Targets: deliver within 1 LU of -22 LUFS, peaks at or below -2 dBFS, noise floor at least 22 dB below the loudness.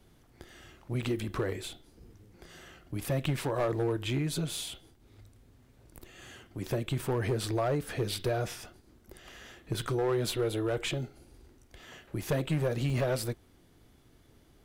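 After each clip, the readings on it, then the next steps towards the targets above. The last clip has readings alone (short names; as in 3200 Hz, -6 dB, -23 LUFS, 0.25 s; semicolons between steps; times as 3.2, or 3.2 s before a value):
clipped 1.0%; flat tops at -23.0 dBFS; dropouts 3; longest dropout 2.6 ms; loudness -32.5 LUFS; peak -23.0 dBFS; loudness target -22.0 LUFS
-> clip repair -23 dBFS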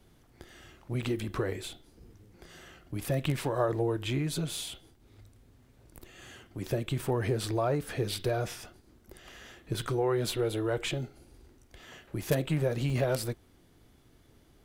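clipped 0.0%; dropouts 3; longest dropout 2.6 ms
-> interpolate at 1.03/4.57/12.9, 2.6 ms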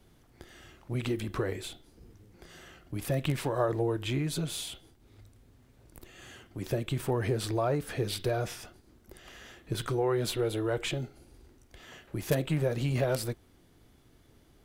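dropouts 0; loudness -32.0 LUFS; peak -14.0 dBFS; loudness target -22.0 LUFS
-> gain +10 dB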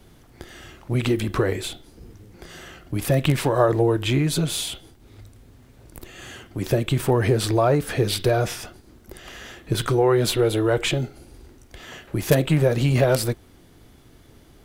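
loudness -22.0 LUFS; peak -4.0 dBFS; noise floor -52 dBFS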